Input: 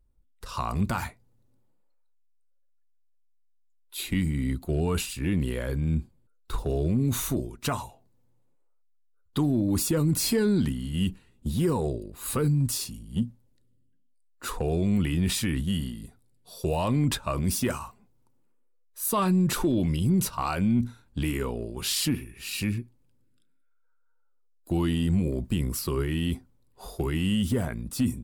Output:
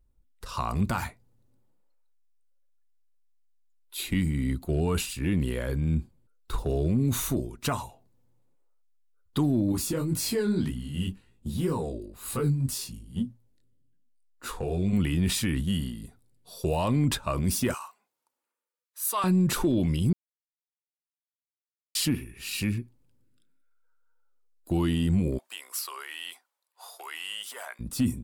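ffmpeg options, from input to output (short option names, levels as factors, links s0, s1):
-filter_complex "[0:a]asettb=1/sr,asplit=3[s0][s1][s2];[s0]atrim=end=9.724[s3];[s1]atrim=start=9.72:end=14.93,asetpts=PTS-STARTPTS,afade=t=in:d=0.004:c=qsin,afade=t=out:st=5.206:d=0.004:c=qsin,flanger=delay=17:depth=6.2:speed=1.9[s4];[s2]atrim=start=14.926[s5];[s3][s4]acrossfade=d=0.004:c1=hsin:c2=qsin[s6];[s6][s5]acrossfade=d=0.004:c1=qsin:c2=hsin,asettb=1/sr,asplit=3[s7][s8][s9];[s7]atrim=end=17.744[s10];[s8]atrim=start=17.74:end=19.24,asetpts=PTS-STARTPTS,afade=t=in:d=0.004:c=qsin,afade=t=out:st=1.496:d=0.004:c=qsin,highpass=840[s11];[s9]atrim=start=19.236[s12];[s10][s11]acrossfade=d=0.004:c1=hsin:c2=qsin[s13];[s13][s12]acrossfade=d=0.004:c1=qsin:c2=hsin,asplit=3[s14][s15][s16];[s14]afade=t=out:st=25.37:d=0.02[s17];[s15]highpass=f=760:w=0.5412,highpass=f=760:w=1.3066,afade=t=in:st=25.37:d=0.02,afade=t=out:st=27.79:d=0.02[s18];[s16]afade=t=in:st=27.79:d=0.02[s19];[s17][s18][s19]amix=inputs=3:normalize=0,asplit=3[s20][s21][s22];[s20]atrim=end=20.13,asetpts=PTS-STARTPTS,afade=t=out:st=20.126:d=0.004:c=hsin[s23];[s21]atrim=start=20.13:end=21.95,asetpts=PTS-STARTPTS,volume=0[s24];[s22]atrim=start=21.95,asetpts=PTS-STARTPTS,afade=t=in:d=0.004:c=hsin[s25];[s23][s24][s25]concat=n=3:v=0:a=1"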